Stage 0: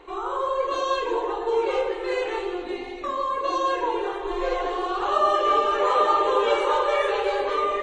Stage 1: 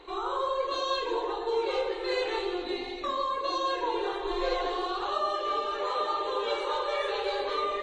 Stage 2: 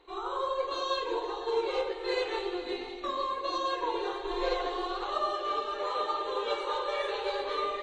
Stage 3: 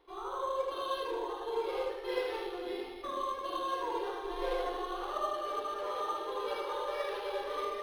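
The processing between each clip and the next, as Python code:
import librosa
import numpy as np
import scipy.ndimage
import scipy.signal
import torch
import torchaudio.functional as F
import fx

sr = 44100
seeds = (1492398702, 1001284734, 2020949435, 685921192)

y1 = fx.peak_eq(x, sr, hz=4000.0, db=11.0, octaves=0.47)
y1 = fx.rider(y1, sr, range_db=4, speed_s=0.5)
y1 = F.gain(torch.from_numpy(y1), -6.5).numpy()
y2 = y1 + 10.0 ** (-11.5 / 20.0) * np.pad(y1, (int(501 * sr / 1000.0), 0))[:len(y1)]
y2 = fx.upward_expand(y2, sr, threshold_db=-45.0, expansion=1.5)
y3 = y2 + 10.0 ** (-3.0 / 20.0) * np.pad(y2, (int(77 * sr / 1000.0), 0))[:len(y2)]
y3 = np.interp(np.arange(len(y3)), np.arange(len(y3))[::6], y3[::6])
y3 = F.gain(torch.from_numpy(y3), -5.0).numpy()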